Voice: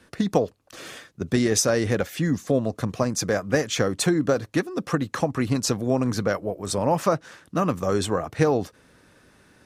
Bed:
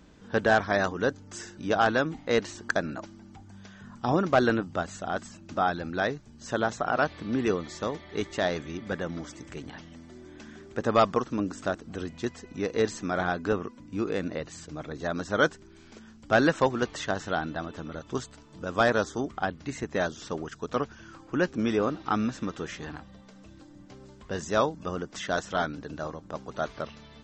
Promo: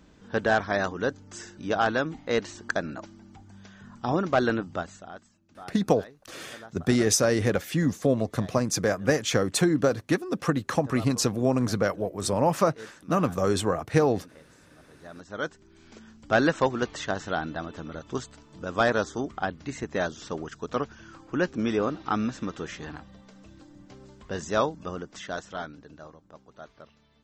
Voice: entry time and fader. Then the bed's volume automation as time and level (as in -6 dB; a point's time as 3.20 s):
5.55 s, -1.0 dB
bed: 4.77 s -1 dB
5.35 s -19 dB
14.80 s -19 dB
15.93 s 0 dB
24.66 s 0 dB
26.49 s -14.5 dB